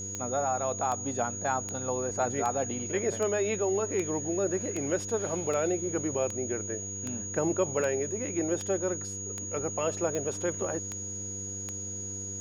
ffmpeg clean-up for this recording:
ffmpeg -i in.wav -af "adeclick=threshold=4,bandreject=frequency=98.7:width_type=h:width=4,bandreject=frequency=197.4:width_type=h:width=4,bandreject=frequency=296.1:width_type=h:width=4,bandreject=frequency=394.8:width_type=h:width=4,bandreject=frequency=493.5:width_type=h:width=4,bandreject=frequency=6700:width=30" out.wav

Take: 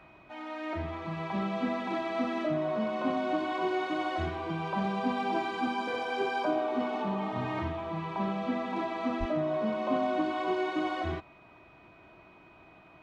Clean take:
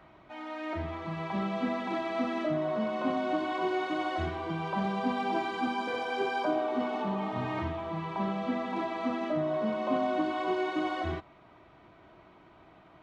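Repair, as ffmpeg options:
ffmpeg -i in.wav -filter_complex "[0:a]bandreject=frequency=2500:width=30,asplit=3[link_01][link_02][link_03];[link_01]afade=type=out:start_time=9.19:duration=0.02[link_04];[link_02]highpass=frequency=140:width=0.5412,highpass=frequency=140:width=1.3066,afade=type=in:start_time=9.19:duration=0.02,afade=type=out:start_time=9.31:duration=0.02[link_05];[link_03]afade=type=in:start_time=9.31:duration=0.02[link_06];[link_04][link_05][link_06]amix=inputs=3:normalize=0" out.wav

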